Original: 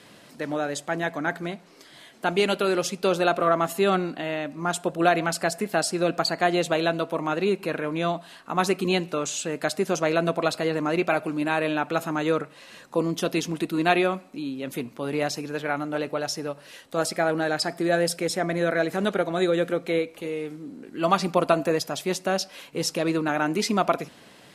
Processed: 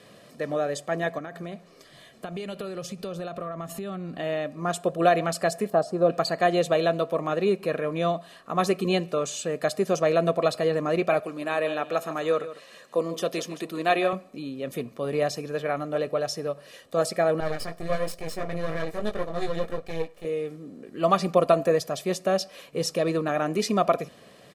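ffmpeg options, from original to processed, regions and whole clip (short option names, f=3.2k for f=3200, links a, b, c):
-filter_complex "[0:a]asettb=1/sr,asplit=3[a][b][c];[a]atrim=end=1.184[d];[b]atrim=start=1.18:end=4.19,asetpts=PTS-STARTPTS,afade=t=in:d=0.004:c=qsin,afade=t=out:st=3.006:d=0.004:c=qsin,asubboost=boost=4.5:cutoff=220,acompressor=threshold=-30dB:ratio=12:attack=3.2:release=140:knee=1:detection=peak[e];[c]atrim=start=4.186[f];[d][e]acrossfade=d=0.004:c1=hsin:c2=qsin[g];[g][f]acrossfade=d=0.004:c1=qsin:c2=hsin,asettb=1/sr,asplit=3[h][i][j];[h]atrim=end=5.704[k];[i]atrim=start=5.7:end=6.1,asetpts=PTS-STARTPTS,afade=t=in:d=0.004:c=qsin,afade=t=out:st=0.396:d=0.004:c=qsin,acrossover=split=6000[l][m];[m]acompressor=threshold=-37dB:ratio=4:attack=1:release=60[n];[l][n]amix=inputs=2:normalize=0,highshelf=f=1.5k:t=q:w=1.5:g=-10.5[o];[j]atrim=start=6.096[p];[k][o]acrossfade=d=0.004:c1=hsin:c2=qsin[q];[q][p]acrossfade=d=0.004:c1=qsin:c2=hsin,asettb=1/sr,asplit=3[r][s][t];[r]atrim=end=11.204[u];[s]atrim=start=11.2:end=14.13,asetpts=PTS-STARTPTS,afade=t=in:d=0.004:c=qsin,afade=t=out:st=2.926:d=0.004:c=qsin,highpass=f=390:p=1,aecho=1:1:151:0.2,atrim=end_sample=129213[v];[t]atrim=start=14.126[w];[u][v]acrossfade=d=0.004:c1=hsin:c2=qsin[x];[x][w]acrossfade=d=0.004:c1=qsin:c2=hsin,asettb=1/sr,asplit=3[y][z][aa];[y]atrim=end=17.404[ab];[z]atrim=start=17.4:end=20.25,asetpts=PTS-STARTPTS,afade=t=in:d=0.004:c=qsin,afade=t=out:st=2.846:d=0.004:c=qsin,asplit=2[ac][ad];[ad]adelay=19,volume=-3dB[ae];[ac][ae]amix=inputs=2:normalize=0,atrim=end_sample=125685,aeval=exprs='max(val(0),0)':c=same,flanger=delay=1.2:depth=5.4:regen=63:speed=1.2:shape=sinusoidal[af];[aa]atrim=start=20.246[ag];[ab][af]acrossfade=d=0.004:c1=hsin:c2=qsin[ah];[ah][ag]acrossfade=d=0.004:c1=qsin:c2=hsin,equalizer=f=300:w=0.6:g=7,aecho=1:1:1.7:0.55,volume=-4.5dB"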